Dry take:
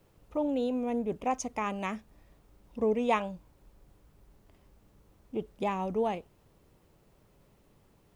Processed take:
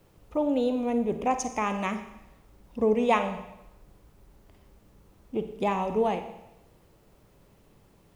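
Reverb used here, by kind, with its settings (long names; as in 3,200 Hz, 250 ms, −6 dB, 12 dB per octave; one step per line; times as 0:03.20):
four-comb reverb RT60 0.91 s, DRR 8.5 dB
level +4 dB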